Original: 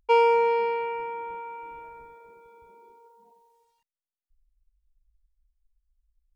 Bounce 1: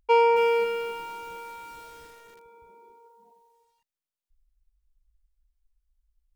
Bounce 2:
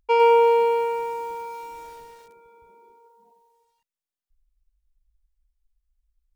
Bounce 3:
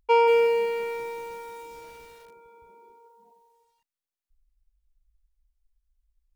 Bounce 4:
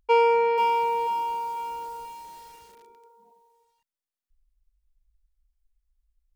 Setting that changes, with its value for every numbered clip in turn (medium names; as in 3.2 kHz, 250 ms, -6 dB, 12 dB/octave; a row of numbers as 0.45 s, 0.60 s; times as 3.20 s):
bit-crushed delay, time: 274 ms, 105 ms, 185 ms, 488 ms